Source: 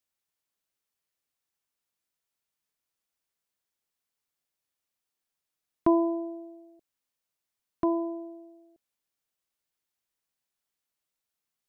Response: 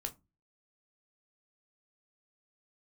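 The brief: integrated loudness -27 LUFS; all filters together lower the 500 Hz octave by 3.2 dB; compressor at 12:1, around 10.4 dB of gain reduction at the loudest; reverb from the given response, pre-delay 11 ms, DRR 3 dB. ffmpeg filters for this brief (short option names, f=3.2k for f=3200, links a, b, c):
-filter_complex "[0:a]equalizer=f=500:t=o:g=-6.5,acompressor=threshold=-30dB:ratio=12,asplit=2[a][b];[1:a]atrim=start_sample=2205,adelay=11[c];[b][c]afir=irnorm=-1:irlink=0,volume=-1.5dB[d];[a][d]amix=inputs=2:normalize=0,volume=10.5dB"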